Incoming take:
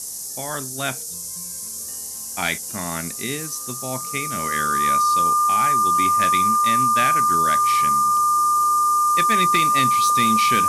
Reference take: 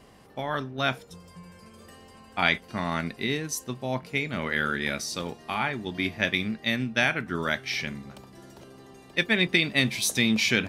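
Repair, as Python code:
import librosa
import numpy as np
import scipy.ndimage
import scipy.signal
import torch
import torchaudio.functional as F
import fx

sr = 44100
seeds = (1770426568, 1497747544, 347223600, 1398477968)

y = fx.fix_declip(x, sr, threshold_db=-11.0)
y = fx.notch(y, sr, hz=1200.0, q=30.0)
y = fx.noise_reduce(y, sr, print_start_s=1.84, print_end_s=2.34, reduce_db=19.0)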